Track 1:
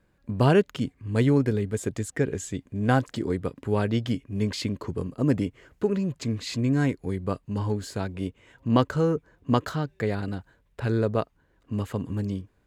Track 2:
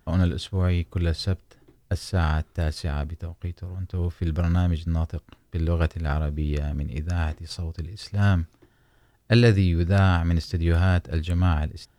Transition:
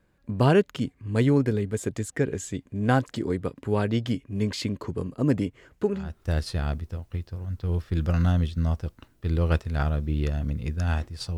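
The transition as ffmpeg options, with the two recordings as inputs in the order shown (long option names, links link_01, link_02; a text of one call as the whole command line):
ffmpeg -i cue0.wav -i cue1.wav -filter_complex "[0:a]apad=whole_dur=11.37,atrim=end=11.37,atrim=end=6.25,asetpts=PTS-STARTPTS[link_01];[1:a]atrim=start=2.17:end=7.67,asetpts=PTS-STARTPTS[link_02];[link_01][link_02]acrossfade=duration=0.38:curve1=qua:curve2=qua" out.wav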